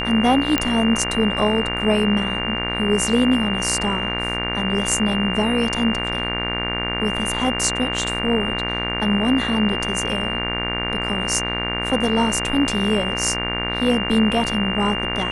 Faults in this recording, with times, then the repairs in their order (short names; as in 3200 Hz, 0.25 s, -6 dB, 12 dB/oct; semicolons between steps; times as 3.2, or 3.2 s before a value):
buzz 60 Hz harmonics 39 -27 dBFS
tone 2800 Hz -25 dBFS
0.58 pop -3 dBFS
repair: de-click; de-hum 60 Hz, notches 39; notch 2800 Hz, Q 30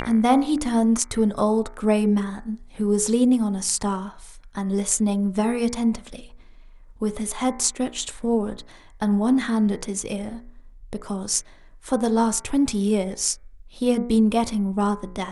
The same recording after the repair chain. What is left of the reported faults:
none